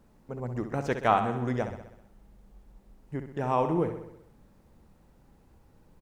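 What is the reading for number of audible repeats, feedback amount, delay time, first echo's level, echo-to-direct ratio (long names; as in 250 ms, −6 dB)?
6, 59%, 64 ms, −9.0 dB, −7.0 dB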